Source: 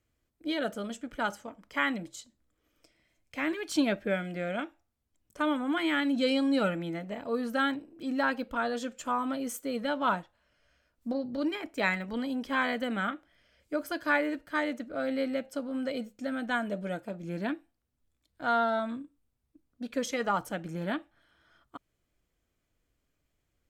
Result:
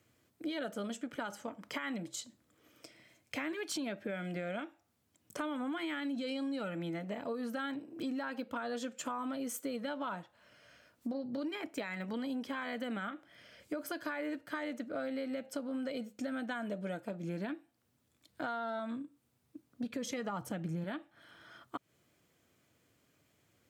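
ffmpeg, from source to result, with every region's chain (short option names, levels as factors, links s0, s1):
-filter_complex "[0:a]asettb=1/sr,asplit=3[s0][s1][s2];[s0]atrim=end=19.834[s3];[s1]atrim=start=19.83:end=20.84,asetpts=PTS-STARTPTS,afade=t=in:d=0.004:c=qsin,afade=t=out:st=1.006:d=0.004:c=qsin,equalizer=f=85:t=o:w=2.2:g=14,bandreject=f=1500:w=23[s4];[s2]atrim=start=20.836[s5];[s3][s4]acrossfade=d=0.004:c1=hsin:c2=qsin[s6];[s6][s5]acrossfade=d=0.004:c1=qsin:c2=hsin,alimiter=level_in=1.12:limit=0.0631:level=0:latency=1:release=105,volume=0.891,highpass=f=100:w=0.5412,highpass=f=100:w=1.3066,acompressor=threshold=0.00398:ratio=4,volume=2.99"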